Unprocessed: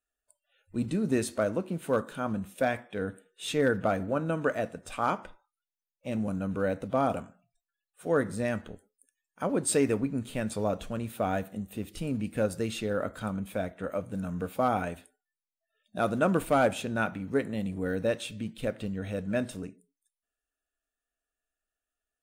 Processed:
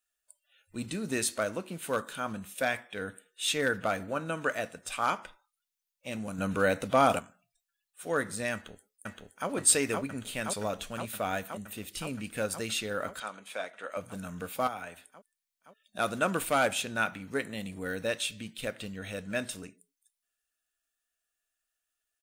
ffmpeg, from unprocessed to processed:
-filter_complex "[0:a]asettb=1/sr,asplit=3[a][b][c];[a]atrim=end=6.384[d];[b]atrim=start=6.38:end=7.19,asetpts=PTS-STARTPTS,afade=t=in:d=0.004:c=qsin,afade=t=out:st=0.806:d=0.004:c=qsin,acontrast=75[e];[c]atrim=start=7.186[f];[d][e]acrossfade=d=0.004:c1=hsin:c2=qsin[g];[g][f]acrossfade=d=0.004:c1=qsin:c2=hsin,asplit=2[h][i];[i]afade=t=in:st=8.53:d=0.01,afade=t=out:st=9.49:d=0.01,aecho=0:1:520|1040|1560|2080|2600|3120|3640|4160|4680|5200|5720|6240:0.841395|0.673116|0.538493|0.430794|0.344635|0.275708|0.220567|0.176453|0.141163|0.11293|0.0903441|0.0722753[j];[h][j]amix=inputs=2:normalize=0,asettb=1/sr,asplit=3[k][l][m];[k]atrim=end=13.204[n];[l]atrim=start=13.2:end=13.97,asetpts=PTS-STARTPTS,afade=t=in:d=0.004:c=qsin,afade=t=out:st=0.766:d=0.004:c=qsin,highpass=450,lowpass=7.6k[o];[m]atrim=start=13.966[p];[n][o]acrossfade=d=0.004:c1=hsin:c2=qsin[q];[q][p]acrossfade=d=0.004:c1=qsin:c2=hsin,asettb=1/sr,asplit=3[r][s][t];[r]atrim=end=14.674[u];[s]atrim=start=14.67:end=15.99,asetpts=PTS-STARTPTS,afade=t=in:d=0.004:c=qsin,afade=t=out:st=1.316:d=0.004:c=qsin,acrossover=split=120|530|2200[v][w][x][y];[v]acompressor=threshold=-58dB:ratio=3[z];[w]acompressor=threshold=-46dB:ratio=3[aa];[x]acompressor=threshold=-38dB:ratio=3[ab];[y]acompressor=threshold=-59dB:ratio=3[ac];[z][aa][ab][ac]amix=inputs=4:normalize=0[ad];[t]atrim=start=15.986[ae];[u][ad]acrossfade=d=0.004:c1=hsin:c2=qsin[af];[af][ae]acrossfade=d=0.004:c1=qsin:c2=hsin,tiltshelf=f=1.1k:g=-7.5"

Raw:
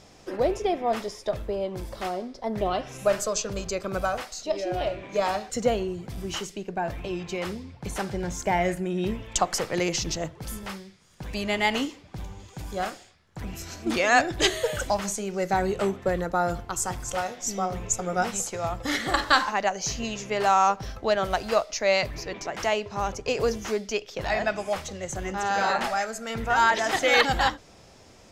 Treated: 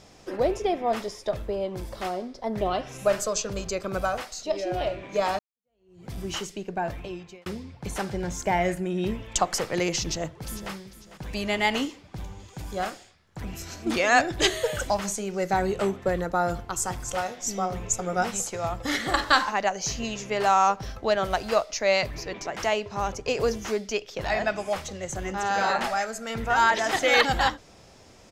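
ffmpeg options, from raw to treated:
-filter_complex "[0:a]asplit=2[a][b];[b]afade=t=in:st=10.01:d=0.01,afade=t=out:st=10.72:d=0.01,aecho=0:1:450|900|1350:0.188365|0.0659277|0.0230747[c];[a][c]amix=inputs=2:normalize=0,asplit=3[d][e][f];[d]atrim=end=5.39,asetpts=PTS-STARTPTS,afade=t=out:st=5.386:d=0.004:c=hsin[g];[e]atrim=start=5.39:end=7.46,asetpts=PTS-STARTPTS,afade=t=in:d=0.69:c=exp,afade=t=out:st=1.48:d=0.59[h];[f]atrim=start=7.46,asetpts=PTS-STARTPTS,afade=t=in:d=0.004:c=hsin[i];[g][h][i]concat=n=3:v=0:a=1"

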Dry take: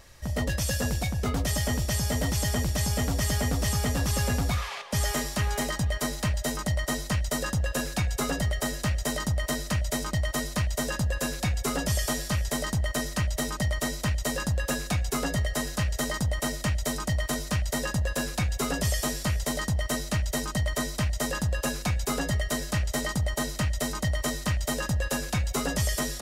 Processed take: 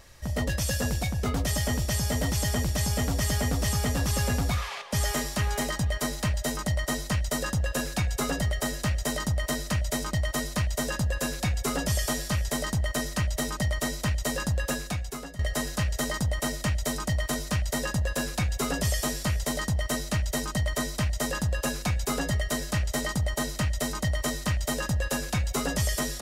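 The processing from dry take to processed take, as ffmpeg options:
-filter_complex "[0:a]asplit=2[a][b];[a]atrim=end=15.39,asetpts=PTS-STARTPTS,afade=t=out:st=14.64:d=0.75:silence=0.125893[c];[b]atrim=start=15.39,asetpts=PTS-STARTPTS,afade=t=in:d=0.004:c=hsin:silence=0.125893[d];[c][d]concat=n=2:v=0:a=1"

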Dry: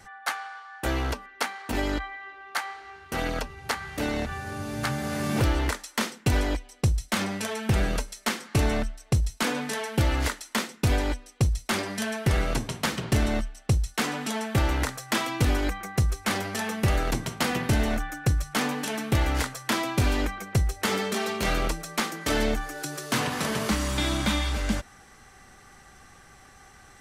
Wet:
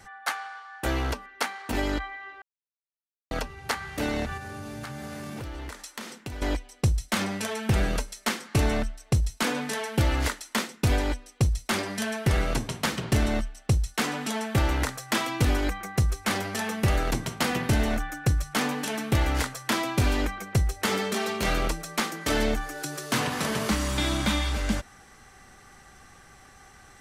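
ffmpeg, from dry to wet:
-filter_complex "[0:a]asettb=1/sr,asplit=3[a][b][c];[a]atrim=end=4.374[d];[b]atrim=start=4.37:end=6.42,asetpts=PTS-STARTPTS,afade=t=in:d=0.004:c=qsin,afade=t=out:st=2.046:d=0.004:c=qsin,acompressor=threshold=-34dB:ratio=6:attack=3.2:release=140:knee=1:detection=peak[e];[c]atrim=start=6.416[f];[d][e]acrossfade=d=0.004:c1=hsin:c2=qsin[g];[g][f]acrossfade=d=0.004:c1=qsin:c2=hsin,asplit=3[h][i][j];[h]atrim=end=2.42,asetpts=PTS-STARTPTS,afade=t=out:st=2.416:d=0.004:c=hsin[k];[i]atrim=start=2.42:end=3.31,asetpts=PTS-STARTPTS,volume=0[l];[j]atrim=start=3.31,asetpts=PTS-STARTPTS,afade=t=in:d=0.004:c=hsin[m];[k][l][m]concat=n=3:v=0:a=1"

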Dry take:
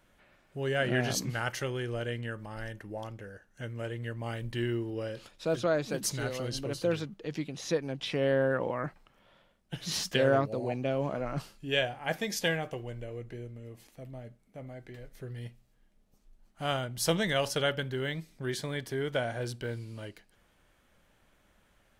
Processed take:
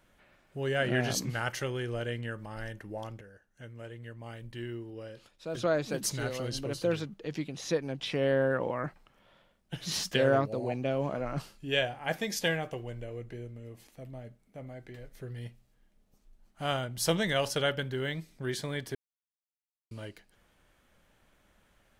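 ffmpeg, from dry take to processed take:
-filter_complex "[0:a]asplit=5[a][b][c][d][e];[a]atrim=end=3.212[f];[b]atrim=start=3.208:end=5.552,asetpts=PTS-STARTPTS,volume=-7.5dB[g];[c]atrim=start=5.548:end=18.95,asetpts=PTS-STARTPTS,afade=t=out:st=13.398:d=0.004:c=hsin[h];[d]atrim=start=18.95:end=19.91,asetpts=PTS-STARTPTS,volume=0[i];[e]atrim=start=19.91,asetpts=PTS-STARTPTS,afade=t=in:d=0.004:c=hsin[j];[f][g]acrossfade=d=0.004:c1=hsin:c2=hsin[k];[h][i][j]concat=n=3:v=0:a=1[l];[k][l]acrossfade=d=0.004:c1=hsin:c2=hsin"

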